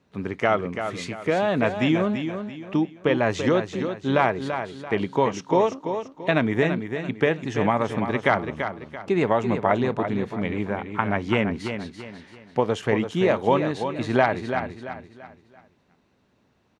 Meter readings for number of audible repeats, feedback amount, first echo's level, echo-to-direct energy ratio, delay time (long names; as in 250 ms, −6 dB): 4, 36%, −8.0 dB, −7.5 dB, 337 ms